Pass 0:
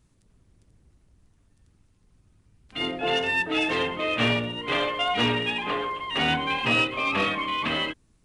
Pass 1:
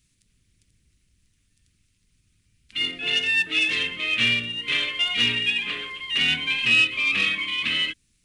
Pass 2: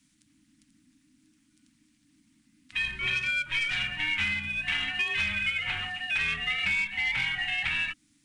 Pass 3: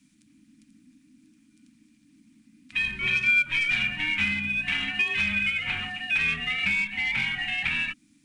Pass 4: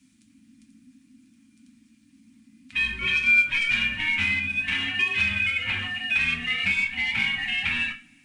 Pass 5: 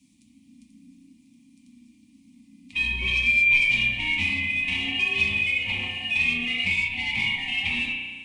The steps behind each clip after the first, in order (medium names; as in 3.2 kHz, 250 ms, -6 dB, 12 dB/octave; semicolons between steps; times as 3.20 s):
FFT filter 210 Hz 0 dB, 490 Hz -7 dB, 820 Hz -14 dB, 2.3 kHz +12 dB; trim -6 dB
compression 5:1, threshold -26 dBFS, peak gain reduction 10.5 dB; frequency shift -320 Hz
small resonant body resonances 220/2400 Hz, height 10 dB, ringing for 25 ms
two-slope reverb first 0.27 s, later 1.8 s, from -27 dB, DRR 3.5 dB
Butterworth band-stop 1.5 kHz, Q 1.3; spring tank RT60 1.5 s, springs 33 ms, chirp 45 ms, DRR 2 dB